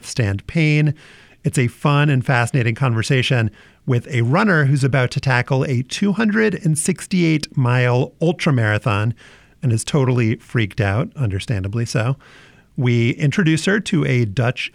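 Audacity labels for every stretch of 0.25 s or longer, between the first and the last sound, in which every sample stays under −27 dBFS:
0.920000	1.450000	silence
3.480000	3.880000	silence
9.120000	9.630000	silence
12.140000	12.780000	silence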